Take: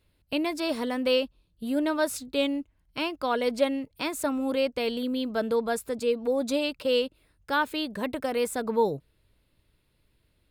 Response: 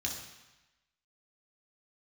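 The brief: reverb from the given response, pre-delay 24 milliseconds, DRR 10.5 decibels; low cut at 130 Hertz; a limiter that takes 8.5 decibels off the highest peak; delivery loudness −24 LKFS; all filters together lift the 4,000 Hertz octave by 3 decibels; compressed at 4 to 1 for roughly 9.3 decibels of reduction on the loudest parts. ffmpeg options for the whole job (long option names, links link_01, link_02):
-filter_complex "[0:a]highpass=130,equalizer=frequency=4000:width_type=o:gain=4,acompressor=threshold=-29dB:ratio=4,alimiter=level_in=2.5dB:limit=-24dB:level=0:latency=1,volume=-2.5dB,asplit=2[link_01][link_02];[1:a]atrim=start_sample=2205,adelay=24[link_03];[link_02][link_03]afir=irnorm=-1:irlink=0,volume=-13dB[link_04];[link_01][link_04]amix=inputs=2:normalize=0,volume=11.5dB"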